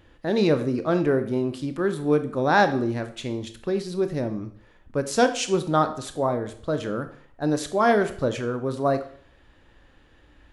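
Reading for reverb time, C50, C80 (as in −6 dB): 0.60 s, 12.0 dB, 15.5 dB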